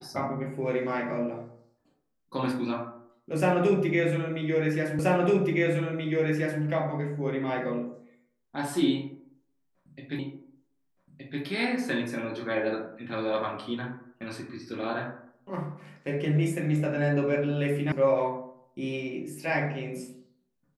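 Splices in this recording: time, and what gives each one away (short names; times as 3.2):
4.99 repeat of the last 1.63 s
10.19 repeat of the last 1.22 s
17.92 sound cut off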